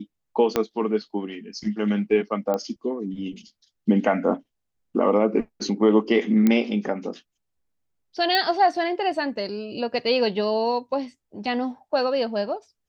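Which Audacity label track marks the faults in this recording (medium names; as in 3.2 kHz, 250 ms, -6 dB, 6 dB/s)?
0.560000	0.560000	pop -7 dBFS
2.540000	2.540000	pop -14 dBFS
6.470000	6.470000	pop -8 dBFS
8.350000	8.350000	pop -9 dBFS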